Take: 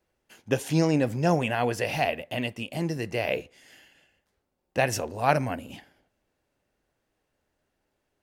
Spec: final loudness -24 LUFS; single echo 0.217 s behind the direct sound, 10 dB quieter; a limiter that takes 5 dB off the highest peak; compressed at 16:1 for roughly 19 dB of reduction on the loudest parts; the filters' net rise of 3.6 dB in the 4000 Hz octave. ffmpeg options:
-af "equalizer=f=4k:t=o:g=5.5,acompressor=threshold=-37dB:ratio=16,alimiter=level_in=6.5dB:limit=-24dB:level=0:latency=1,volume=-6.5dB,aecho=1:1:217:0.316,volume=19.5dB"

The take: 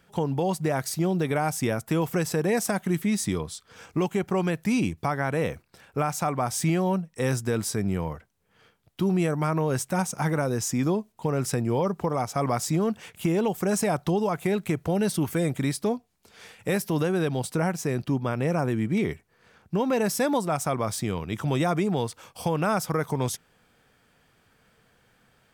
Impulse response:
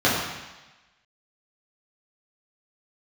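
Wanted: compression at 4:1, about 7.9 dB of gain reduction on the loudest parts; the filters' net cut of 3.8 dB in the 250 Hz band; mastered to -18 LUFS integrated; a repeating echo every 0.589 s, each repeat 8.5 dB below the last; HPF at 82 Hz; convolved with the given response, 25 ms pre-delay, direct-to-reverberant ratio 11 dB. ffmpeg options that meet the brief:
-filter_complex "[0:a]highpass=82,equalizer=f=250:t=o:g=-5.5,acompressor=threshold=-32dB:ratio=4,aecho=1:1:589|1178|1767|2356:0.376|0.143|0.0543|0.0206,asplit=2[a][b];[1:a]atrim=start_sample=2205,adelay=25[c];[b][c]afir=irnorm=-1:irlink=0,volume=-31dB[d];[a][d]amix=inputs=2:normalize=0,volume=17dB"

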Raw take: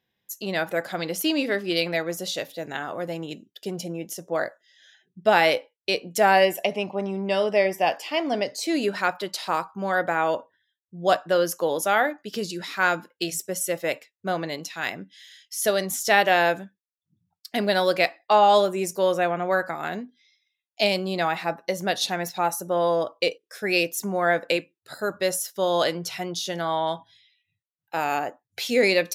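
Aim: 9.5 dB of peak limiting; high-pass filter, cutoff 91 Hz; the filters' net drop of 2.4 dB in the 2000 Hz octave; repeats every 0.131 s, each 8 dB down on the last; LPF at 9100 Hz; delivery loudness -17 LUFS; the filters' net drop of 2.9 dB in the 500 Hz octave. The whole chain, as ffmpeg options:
-af "highpass=91,lowpass=9.1k,equalizer=f=500:t=o:g=-3.5,equalizer=f=2k:t=o:g=-3,alimiter=limit=-16.5dB:level=0:latency=1,aecho=1:1:131|262|393|524|655:0.398|0.159|0.0637|0.0255|0.0102,volume=11.5dB"

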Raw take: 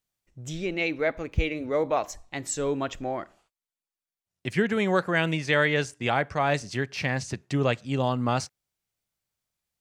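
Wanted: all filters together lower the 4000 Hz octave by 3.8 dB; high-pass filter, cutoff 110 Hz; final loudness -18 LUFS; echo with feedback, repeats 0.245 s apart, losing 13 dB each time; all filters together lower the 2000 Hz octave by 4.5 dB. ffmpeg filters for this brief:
-af "highpass=110,equalizer=f=2k:t=o:g=-5,equalizer=f=4k:t=o:g=-3,aecho=1:1:245|490|735:0.224|0.0493|0.0108,volume=10.5dB"

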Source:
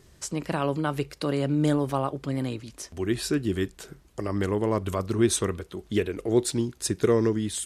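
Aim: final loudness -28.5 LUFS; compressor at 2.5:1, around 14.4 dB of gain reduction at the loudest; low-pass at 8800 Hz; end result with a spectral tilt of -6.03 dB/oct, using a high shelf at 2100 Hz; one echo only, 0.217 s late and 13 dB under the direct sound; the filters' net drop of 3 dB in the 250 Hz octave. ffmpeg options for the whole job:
-af "lowpass=8.8k,equalizer=f=250:t=o:g=-4,highshelf=f=2.1k:g=-9,acompressor=threshold=-41dB:ratio=2.5,aecho=1:1:217:0.224,volume=12.5dB"

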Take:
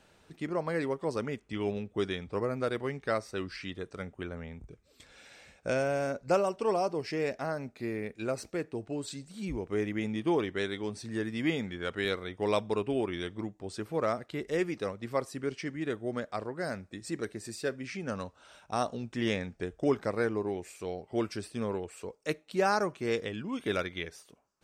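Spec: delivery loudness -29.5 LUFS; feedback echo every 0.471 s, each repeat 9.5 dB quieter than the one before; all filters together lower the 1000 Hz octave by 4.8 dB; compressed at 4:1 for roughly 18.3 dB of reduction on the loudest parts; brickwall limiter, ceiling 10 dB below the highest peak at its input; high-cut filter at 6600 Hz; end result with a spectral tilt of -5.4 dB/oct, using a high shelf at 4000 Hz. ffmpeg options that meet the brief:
-af "lowpass=6.6k,equalizer=f=1k:t=o:g=-6.5,highshelf=f=4k:g=-6,acompressor=threshold=-47dB:ratio=4,alimiter=level_in=19dB:limit=-24dB:level=0:latency=1,volume=-19dB,aecho=1:1:471|942|1413|1884:0.335|0.111|0.0365|0.012,volume=23dB"

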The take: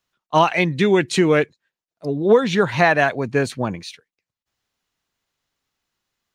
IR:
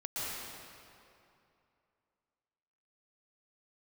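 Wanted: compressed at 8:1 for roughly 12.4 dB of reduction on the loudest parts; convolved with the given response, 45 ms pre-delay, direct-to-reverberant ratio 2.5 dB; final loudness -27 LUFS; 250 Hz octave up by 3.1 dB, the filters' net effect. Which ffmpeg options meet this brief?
-filter_complex "[0:a]equalizer=f=250:t=o:g=4.5,acompressor=threshold=-20dB:ratio=8,asplit=2[a][b];[1:a]atrim=start_sample=2205,adelay=45[c];[b][c]afir=irnorm=-1:irlink=0,volume=-7dB[d];[a][d]amix=inputs=2:normalize=0,volume=-3dB"

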